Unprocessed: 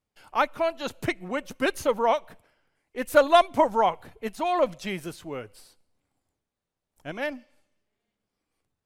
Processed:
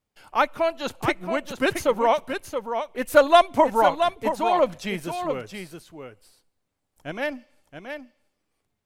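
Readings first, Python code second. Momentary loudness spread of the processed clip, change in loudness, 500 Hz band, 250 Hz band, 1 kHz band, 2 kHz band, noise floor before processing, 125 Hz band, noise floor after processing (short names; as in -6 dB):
20 LU, +2.5 dB, +3.0 dB, +3.0 dB, +3.5 dB, +3.0 dB, under -85 dBFS, +3.0 dB, -79 dBFS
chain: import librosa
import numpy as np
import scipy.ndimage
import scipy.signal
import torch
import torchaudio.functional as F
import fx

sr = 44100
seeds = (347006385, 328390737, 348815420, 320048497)

y = x + 10.0 ** (-7.5 / 20.0) * np.pad(x, (int(675 * sr / 1000.0), 0))[:len(x)]
y = F.gain(torch.from_numpy(y), 2.5).numpy()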